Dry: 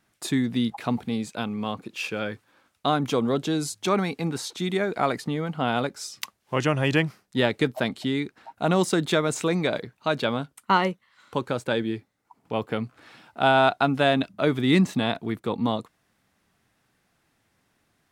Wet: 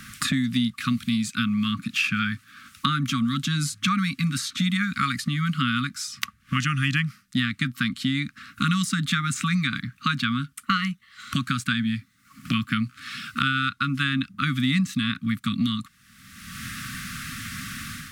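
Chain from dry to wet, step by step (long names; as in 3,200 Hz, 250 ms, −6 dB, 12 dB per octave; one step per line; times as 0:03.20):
automatic gain control gain up to 8.5 dB
linear-phase brick-wall band-stop 280–1,100 Hz
multiband upward and downward compressor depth 100%
level −2.5 dB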